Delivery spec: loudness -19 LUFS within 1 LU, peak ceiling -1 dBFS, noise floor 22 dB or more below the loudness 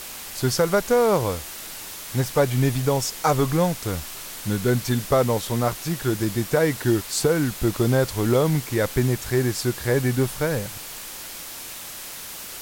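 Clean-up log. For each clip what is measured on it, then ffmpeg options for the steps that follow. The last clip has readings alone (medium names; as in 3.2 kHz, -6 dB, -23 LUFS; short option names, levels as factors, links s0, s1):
noise floor -37 dBFS; noise floor target -45 dBFS; loudness -23.0 LUFS; peak level -7.5 dBFS; loudness target -19.0 LUFS
-> -af "afftdn=nr=8:nf=-37"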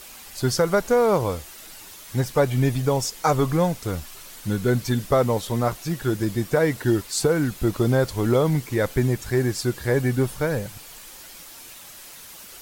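noise floor -43 dBFS; noise floor target -45 dBFS
-> -af "afftdn=nr=6:nf=-43"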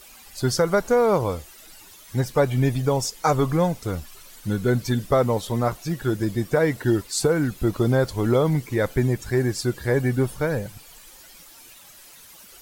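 noise floor -48 dBFS; loudness -23.0 LUFS; peak level -8.0 dBFS; loudness target -19.0 LUFS
-> -af "volume=1.58"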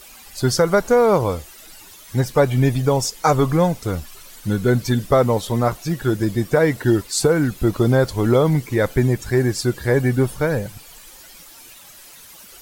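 loudness -19.0 LUFS; peak level -4.0 dBFS; noise floor -44 dBFS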